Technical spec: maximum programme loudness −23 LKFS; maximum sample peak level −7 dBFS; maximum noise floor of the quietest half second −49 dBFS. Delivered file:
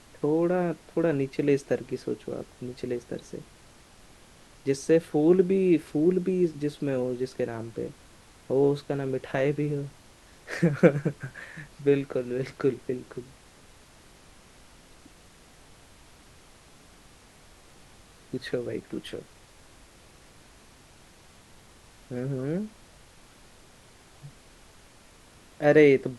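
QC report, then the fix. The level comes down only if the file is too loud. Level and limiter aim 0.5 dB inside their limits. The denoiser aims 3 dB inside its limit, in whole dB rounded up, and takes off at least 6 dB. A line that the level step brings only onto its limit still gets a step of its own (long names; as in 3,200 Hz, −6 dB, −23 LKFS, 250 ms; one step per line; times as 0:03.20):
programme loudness −27.0 LKFS: in spec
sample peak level −3.5 dBFS: out of spec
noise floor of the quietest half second −54 dBFS: in spec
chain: brickwall limiter −7.5 dBFS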